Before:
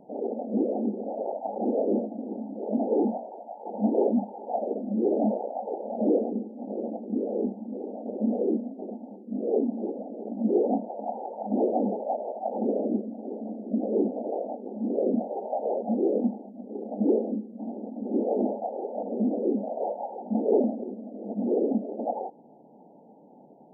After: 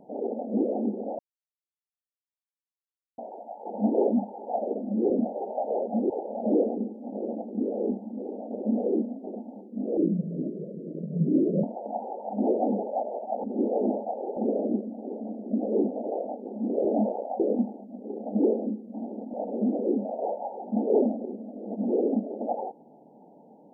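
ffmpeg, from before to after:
-filter_complex "[0:a]asplit=12[s0][s1][s2][s3][s4][s5][s6][s7][s8][s9][s10][s11];[s0]atrim=end=1.19,asetpts=PTS-STARTPTS,afade=t=out:st=1.186:d=0.004:c=hsin[s12];[s1]atrim=start=1.19:end=3.18,asetpts=PTS-STARTPTS,volume=0[s13];[s2]atrim=start=3.18:end=5.102,asetpts=PTS-STARTPTS,afade=t=in:d=0.004:c=hsin[s14];[s3]atrim=start=15.048:end=16.052[s15];[s4]atrim=start=5.648:end=9.524[s16];[s5]atrim=start=9.52:end=10.77,asetpts=PTS-STARTPTS,asetrate=33075,aresample=44100[s17];[s6]atrim=start=10.766:end=12.572[s18];[s7]atrim=start=17.988:end=18.922[s19];[s8]atrim=start=12.568:end=15.052[s20];[s9]atrim=start=5.098:end=5.652[s21];[s10]atrim=start=16.048:end=17.992[s22];[s11]atrim=start=18.918[s23];[s12][s13][s14]concat=n=3:v=0:a=1[s24];[s24][s15]acrossfade=d=0.004:c1=hsin:c2=hsin[s25];[s25][s16]acrossfade=d=0.004:c1=hsin:c2=hsin[s26];[s26][s17]acrossfade=d=0.004:c1=hsin:c2=hsin[s27];[s27][s18]acrossfade=d=0.004:c1=hsin:c2=hsin[s28];[s28][s19]acrossfade=d=0.004:c1=hsin:c2=hsin[s29];[s29][s20]acrossfade=d=0.004:c1=hsin:c2=hsin[s30];[s30][s21]acrossfade=d=0.004:c1=hsin:c2=hsin[s31];[s31][s22]acrossfade=d=0.004:c1=hsin:c2=hsin[s32];[s32][s23]acrossfade=d=0.004:c1=hsin:c2=hsin"

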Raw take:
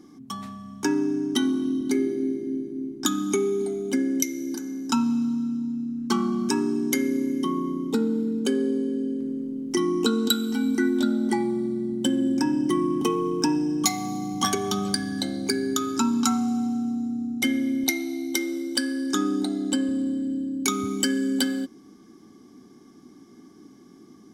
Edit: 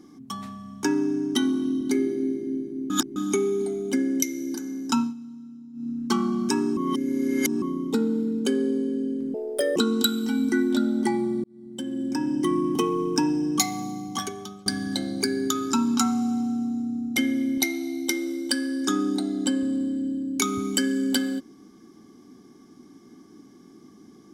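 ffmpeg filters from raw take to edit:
-filter_complex "[0:a]asplit=11[s0][s1][s2][s3][s4][s5][s6][s7][s8][s9][s10];[s0]atrim=end=2.902[s11];[s1]atrim=start=2.898:end=3.162,asetpts=PTS-STARTPTS,areverse[s12];[s2]atrim=start=3.158:end=5.14,asetpts=PTS-STARTPTS,afade=t=out:st=1.832:d=0.15:silence=0.177828[s13];[s3]atrim=start=5.14:end=5.73,asetpts=PTS-STARTPTS,volume=0.178[s14];[s4]atrim=start=5.73:end=6.772,asetpts=PTS-STARTPTS,afade=t=in:d=0.15:silence=0.177828[s15];[s5]atrim=start=6.768:end=7.622,asetpts=PTS-STARTPTS,areverse[s16];[s6]atrim=start=7.618:end=9.344[s17];[s7]atrim=start=9.34:end=10.02,asetpts=PTS-STARTPTS,asetrate=71442,aresample=44100,atrim=end_sample=18511,asetpts=PTS-STARTPTS[s18];[s8]atrim=start=10.016:end=11.7,asetpts=PTS-STARTPTS,afade=t=out:st=1.68:d=0.004:c=hsin[s19];[s9]atrim=start=11.7:end=14.92,asetpts=PTS-STARTPTS,afade=t=in:d=1.09,afade=t=out:st=2.19:d=1.03:silence=0.0749894[s20];[s10]atrim=start=14.92,asetpts=PTS-STARTPTS,afade=t=in:d=0.004:c=hsin:silence=0.0749894[s21];[s11][s12]acrossfade=d=0.004:c1=hsin:c2=hsin[s22];[s13][s14][s15]concat=n=3:v=0:a=1[s23];[s22][s23]acrossfade=d=0.004:c1=hsin:c2=hsin[s24];[s24][s16]acrossfade=d=0.004:c1=hsin:c2=hsin[s25];[s25][s17]acrossfade=d=0.004:c1=hsin:c2=hsin[s26];[s26][s18]acrossfade=d=0.004:c1=hsin:c2=hsin[s27];[s19][s20][s21]concat=n=3:v=0:a=1[s28];[s27][s28]acrossfade=d=0.004:c1=hsin:c2=hsin"

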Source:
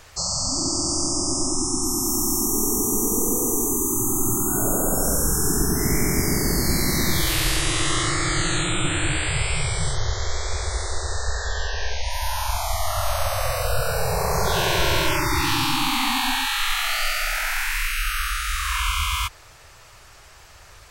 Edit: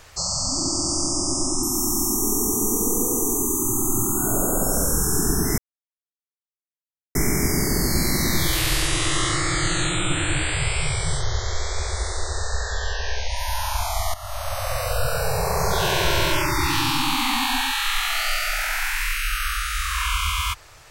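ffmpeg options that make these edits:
-filter_complex "[0:a]asplit=4[s0][s1][s2][s3];[s0]atrim=end=1.632[s4];[s1]atrim=start=1.938:end=5.89,asetpts=PTS-STARTPTS,afade=t=out:st=3.948:d=0.004:c=hsin,apad=pad_dur=1.57[s5];[s2]atrim=start=5.89:end=12.88,asetpts=PTS-STARTPTS,afade=t=in:d=0.004:c=hsin,afade=t=out:st=6.986:d=0.004:c=hsin:silence=0.188365[s6];[s3]atrim=start=12.88,asetpts=PTS-STARTPTS,afade=t=in:d=1.01:c=qsin:silence=0.188365[s7];[s5][s6][s7]concat=n=3:v=0:a=1[s8];[s4][s8]acrossfade=d=0.004:c1=hsin:c2=hsin"

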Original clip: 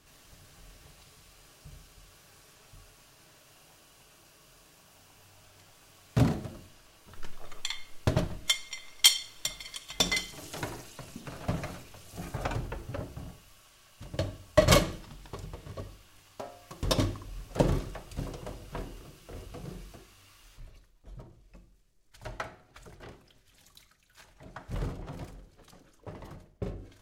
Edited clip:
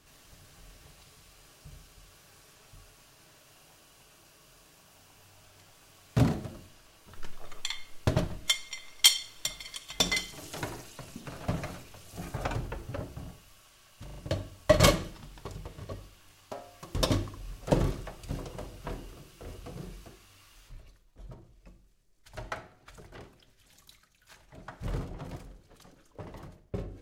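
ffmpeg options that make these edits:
-filter_complex "[0:a]asplit=4[s0][s1][s2][s3];[s0]atrim=end=14.082[s4];[s1]atrim=start=14.038:end=14.082[s5];[s2]atrim=start=14.038:end=14.082[s6];[s3]atrim=start=14.038[s7];[s4][s5]acrossfade=d=0.004:c1=hsin:c2=hsin[s8];[s8][s6]acrossfade=d=0.004:c1=hsin:c2=hsin[s9];[s9][s7]acrossfade=d=0.004:c1=hsin:c2=hsin"

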